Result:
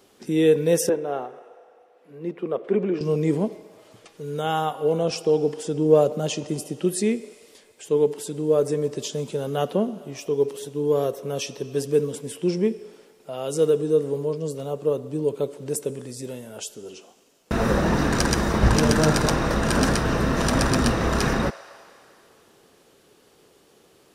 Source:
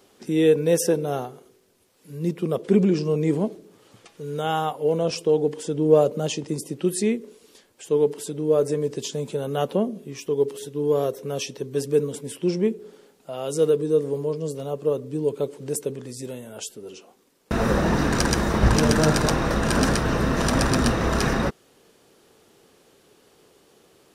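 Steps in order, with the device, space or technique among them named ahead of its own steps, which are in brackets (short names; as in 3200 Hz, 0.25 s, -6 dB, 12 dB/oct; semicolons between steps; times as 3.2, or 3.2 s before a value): filtered reverb send (on a send: HPF 540 Hz 24 dB/oct + LPF 8400 Hz + reverb RT60 2.8 s, pre-delay 31 ms, DRR 15 dB); 0.89–3.01 on the sum: three-band isolator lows -16 dB, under 270 Hz, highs -21 dB, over 2800 Hz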